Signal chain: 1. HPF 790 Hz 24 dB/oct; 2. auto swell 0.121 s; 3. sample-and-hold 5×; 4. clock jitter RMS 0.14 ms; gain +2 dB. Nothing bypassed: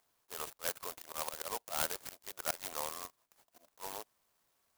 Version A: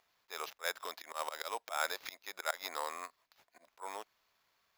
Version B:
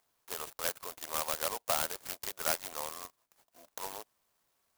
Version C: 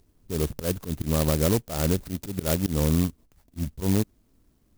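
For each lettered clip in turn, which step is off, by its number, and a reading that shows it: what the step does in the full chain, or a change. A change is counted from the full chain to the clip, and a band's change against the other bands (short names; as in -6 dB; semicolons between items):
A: 4, 8 kHz band -7.0 dB; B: 2, loudness change +4.5 LU; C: 1, 125 Hz band +29.0 dB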